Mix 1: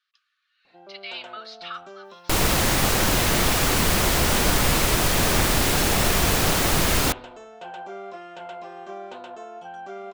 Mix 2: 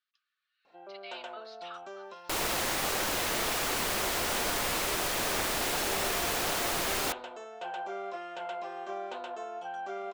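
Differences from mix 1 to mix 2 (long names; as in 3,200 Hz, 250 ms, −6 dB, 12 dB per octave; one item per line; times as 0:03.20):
speech −10.5 dB
second sound −8.0 dB
master: add bass and treble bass −13 dB, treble −1 dB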